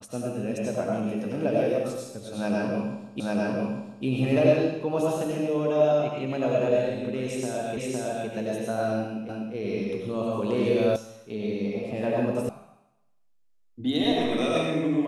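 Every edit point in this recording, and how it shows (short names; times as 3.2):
3.2 repeat of the last 0.85 s
7.77 repeat of the last 0.51 s
9.29 repeat of the last 0.25 s
10.96 sound cut off
12.49 sound cut off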